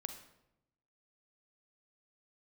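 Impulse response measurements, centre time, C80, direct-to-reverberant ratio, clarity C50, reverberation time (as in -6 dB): 16 ms, 11.0 dB, 7.0 dB, 8.0 dB, 0.85 s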